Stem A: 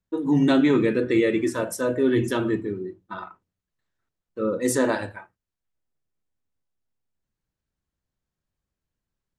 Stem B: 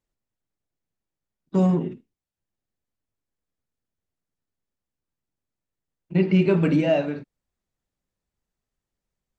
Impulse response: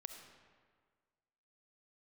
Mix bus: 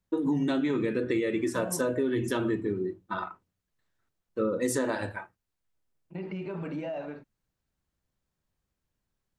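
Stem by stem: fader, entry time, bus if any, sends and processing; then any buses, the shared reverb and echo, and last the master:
+2.0 dB, 0.00 s, no send, dry
-14.5 dB, 0.00 s, no send, bell 920 Hz +10.5 dB 2 oct; limiter -13.5 dBFS, peak gain reduction 10.5 dB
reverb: off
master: compressor 12:1, threshold -24 dBFS, peak gain reduction 12 dB

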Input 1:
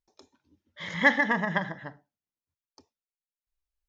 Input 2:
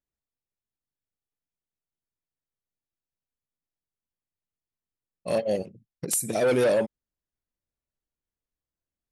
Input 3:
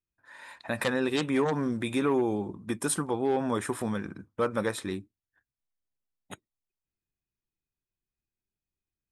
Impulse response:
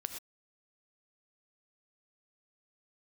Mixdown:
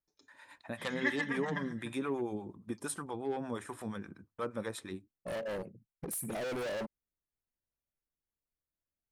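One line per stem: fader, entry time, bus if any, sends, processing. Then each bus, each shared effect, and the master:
-11.5 dB, 0.00 s, no send, bell 720 Hz -13.5 dB 0.96 oct; comb 6.8 ms, depth 73%
-4.5 dB, 0.00 s, no send, band shelf 4700 Hz -14.5 dB; hard clip -31 dBFS, distortion -5 dB
-6.0 dB, 0.00 s, no send, gate with hold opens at -45 dBFS; harmonic tremolo 8.5 Hz, depth 70%, crossover 610 Hz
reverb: off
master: dry

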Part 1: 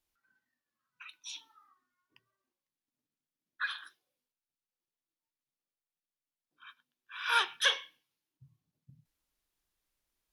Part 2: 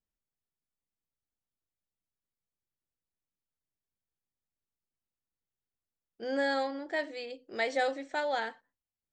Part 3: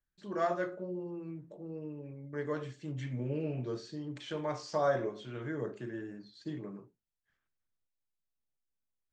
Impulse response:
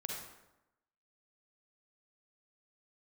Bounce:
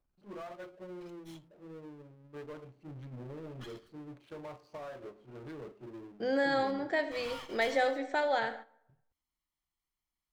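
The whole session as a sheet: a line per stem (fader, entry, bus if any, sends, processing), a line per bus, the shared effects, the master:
-17.5 dB, 0.00 s, bus A, no send, minimum comb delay 0.96 ms; gate -57 dBFS, range -19 dB
+2.5 dB, 0.00 s, no bus, send -7 dB, compressor 1.5:1, threshold -36 dBFS, peak gain reduction 4.5 dB
-8.5 dB, 0.00 s, bus A, no send, Wiener smoothing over 25 samples; low shelf 410 Hz -7.5 dB
bus A: 0.0 dB, power-law curve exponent 0.5; compressor 16:1, threshold -41 dBFS, peak gain reduction 8.5 dB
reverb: on, RT60 0.95 s, pre-delay 38 ms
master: gate -45 dBFS, range -12 dB; high shelf 4100 Hz -6 dB

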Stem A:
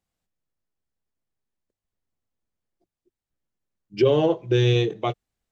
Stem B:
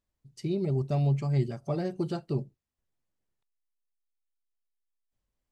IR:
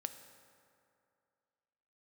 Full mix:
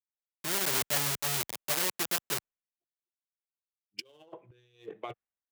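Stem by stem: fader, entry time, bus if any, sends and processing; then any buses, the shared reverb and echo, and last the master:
-10.5 dB, 0.00 s, no send, Wiener smoothing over 9 samples; negative-ratio compressor -26 dBFS, ratio -0.5
-1.5 dB, 0.00 s, no send, LPF 1900 Hz; compressor 6:1, threshold -38 dBFS, peak gain reduction 16 dB; companded quantiser 2-bit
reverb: off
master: tilt +4.5 dB/oct; three-band expander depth 100%

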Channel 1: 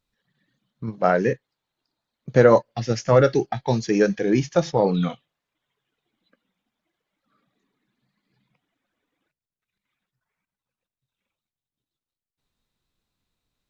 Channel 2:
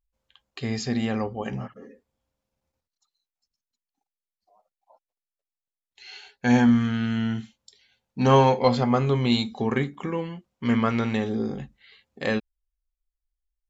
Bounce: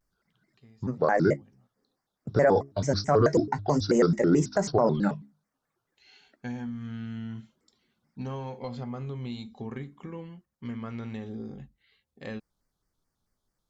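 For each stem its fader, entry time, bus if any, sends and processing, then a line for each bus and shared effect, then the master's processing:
+0.5 dB, 0.00 s, no send, band shelf 2800 Hz -16 dB 1 oct; notches 60/120/180/240/300/360 Hz; shaped vibrato square 4.6 Hz, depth 250 cents
-14.0 dB, 0.00 s, no send, low shelf 230 Hz +9 dB; compressor 10:1, threshold -18 dBFS, peak gain reduction 9.5 dB; auto duck -22 dB, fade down 0.70 s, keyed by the first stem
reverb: off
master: limiter -12.5 dBFS, peak gain reduction 10 dB

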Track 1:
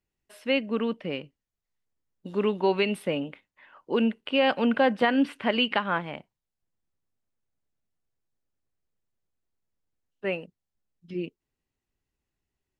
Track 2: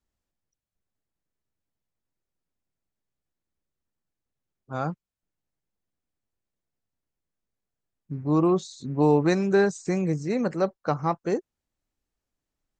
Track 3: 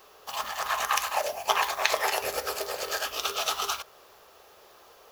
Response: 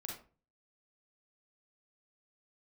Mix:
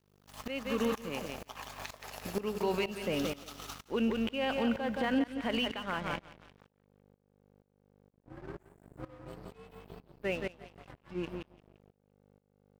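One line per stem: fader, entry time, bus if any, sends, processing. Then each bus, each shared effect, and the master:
+1.5 dB, 0.00 s, no send, echo send -7.5 dB, limiter -14.5 dBFS, peak gain reduction 5.5 dB; hum 50 Hz, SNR 14 dB
-17.5 dB, 0.00 s, no send, echo send -4 dB, inharmonic rescaling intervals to 126%
-10.0 dB, 0.00 s, no send, echo send -8 dB, tone controls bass +8 dB, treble +1 dB; upward compressor, threshold -41 dBFS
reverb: off
echo: feedback echo 0.172 s, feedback 40%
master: crossover distortion -41.5 dBFS; tremolo saw up 2.1 Hz, depth 90%; limiter -21.5 dBFS, peak gain reduction 10.5 dB

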